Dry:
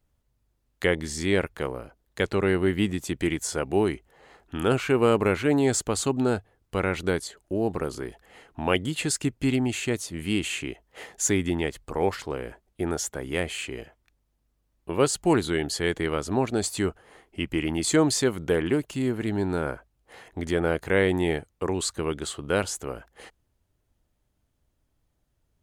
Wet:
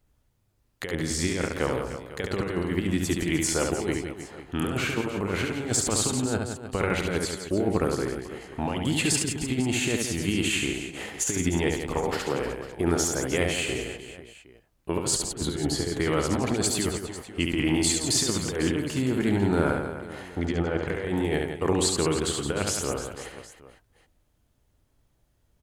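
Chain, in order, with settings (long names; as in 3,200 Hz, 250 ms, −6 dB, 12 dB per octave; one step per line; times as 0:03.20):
0:11.98–0:12.41: high-pass filter 110 Hz 24 dB per octave
0:15.15–0:15.96: tilt shelving filter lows +5 dB, about 1,400 Hz
compressor whose output falls as the input rises −26 dBFS, ratio −0.5
0:20.38–0:20.88: high-frequency loss of the air 120 metres
reverse bouncing-ball delay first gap 70 ms, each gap 1.4×, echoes 5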